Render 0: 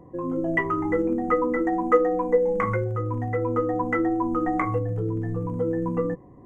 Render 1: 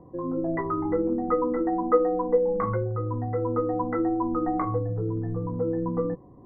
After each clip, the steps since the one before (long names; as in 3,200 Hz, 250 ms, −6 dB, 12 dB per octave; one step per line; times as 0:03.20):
low-pass filter 1,400 Hz 24 dB per octave
level −1.5 dB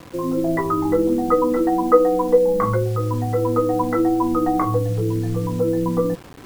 bit reduction 8 bits
level +7 dB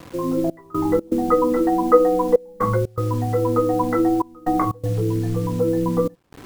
gate pattern "xxxx..xx.xxxxxx" 121 BPM −24 dB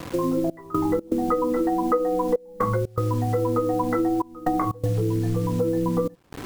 downward compressor 4 to 1, threshold −27 dBFS, peak gain reduction 16 dB
level +5.5 dB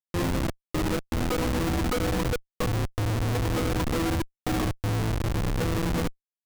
comparator with hysteresis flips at −21 dBFS
level −1.5 dB